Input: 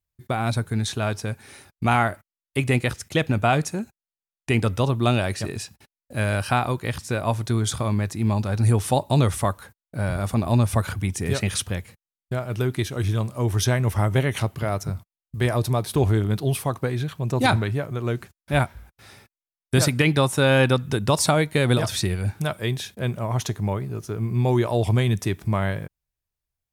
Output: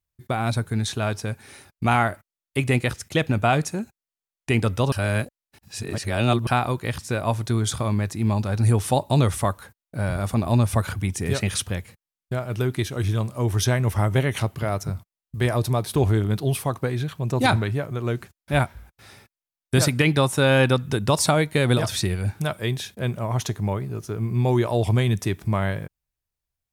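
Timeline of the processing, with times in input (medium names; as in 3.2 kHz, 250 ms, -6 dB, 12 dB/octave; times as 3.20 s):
4.92–6.47 s: reverse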